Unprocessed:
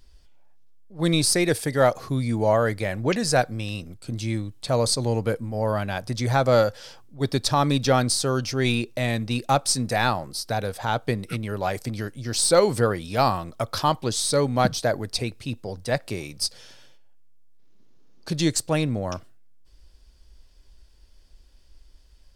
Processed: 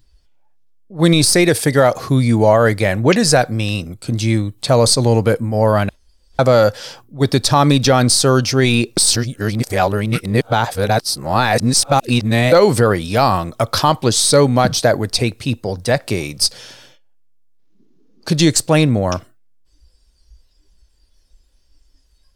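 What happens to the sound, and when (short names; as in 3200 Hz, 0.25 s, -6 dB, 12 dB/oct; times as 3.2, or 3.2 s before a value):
5.89–6.39 room tone
8.97–12.52 reverse
whole clip: spectral noise reduction 14 dB; de-esser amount 35%; maximiser +12 dB; gain -1 dB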